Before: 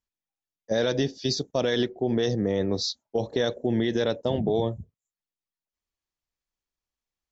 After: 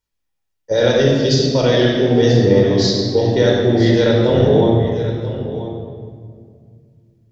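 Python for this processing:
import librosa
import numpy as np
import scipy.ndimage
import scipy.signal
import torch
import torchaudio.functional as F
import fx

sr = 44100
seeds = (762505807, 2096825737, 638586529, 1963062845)

p1 = x + fx.echo_single(x, sr, ms=984, db=-13.0, dry=0)
p2 = fx.room_shoebox(p1, sr, seeds[0], volume_m3=3600.0, walls='mixed', distance_m=4.6)
y = p2 * librosa.db_to_amplitude(4.5)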